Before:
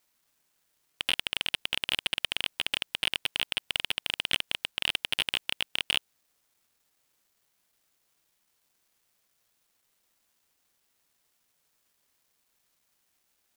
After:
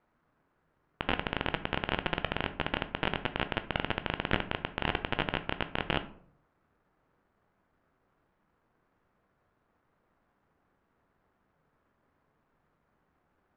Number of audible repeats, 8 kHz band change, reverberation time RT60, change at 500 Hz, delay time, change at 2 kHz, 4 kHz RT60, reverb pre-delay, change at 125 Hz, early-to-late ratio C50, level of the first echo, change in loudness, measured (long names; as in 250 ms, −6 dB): no echo audible, below −30 dB, 0.55 s, +10.5 dB, no echo audible, −2.0 dB, 0.30 s, 12 ms, +14.0 dB, 14.5 dB, no echo audible, −4.0 dB